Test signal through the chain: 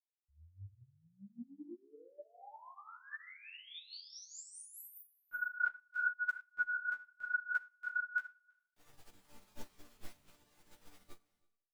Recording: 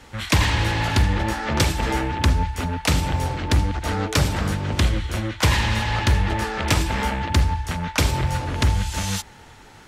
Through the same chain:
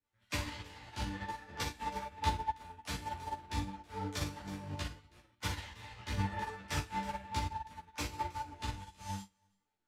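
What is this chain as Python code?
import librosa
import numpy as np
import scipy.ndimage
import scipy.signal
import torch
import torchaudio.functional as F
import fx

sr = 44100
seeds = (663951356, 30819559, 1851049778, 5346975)

y = fx.harmonic_tremolo(x, sr, hz=4.7, depth_pct=50, crossover_hz=500.0)
y = fx.resonator_bank(y, sr, root=43, chord='minor', decay_s=0.54)
y = fx.chorus_voices(y, sr, voices=6, hz=1.3, base_ms=14, depth_ms=3.0, mix_pct=45)
y = y + 10.0 ** (-13.0 / 20.0) * np.pad(y, (int(324 * sr / 1000.0), 0))[:len(y)]
y = fx.upward_expand(y, sr, threshold_db=-55.0, expansion=2.5)
y = F.gain(torch.from_numpy(y), 9.0).numpy()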